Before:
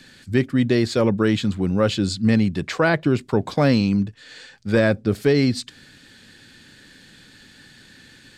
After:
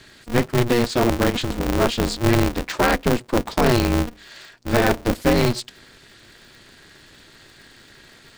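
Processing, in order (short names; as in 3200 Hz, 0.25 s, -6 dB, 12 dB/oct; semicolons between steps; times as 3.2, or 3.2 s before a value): 1.3–1.71 negative-ratio compressor -22 dBFS, ratio -0.5; 3.71–5.05 de-hum 92.11 Hz, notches 6; polarity switched at an audio rate 120 Hz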